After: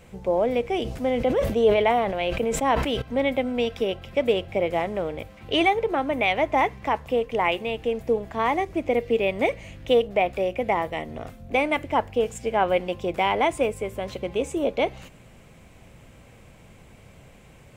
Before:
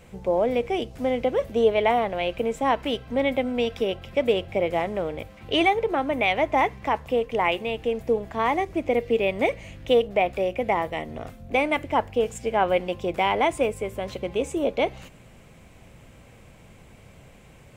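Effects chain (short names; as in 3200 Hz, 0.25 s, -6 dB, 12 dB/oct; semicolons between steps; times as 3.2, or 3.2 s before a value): 0.73–3.02 sustainer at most 54 dB/s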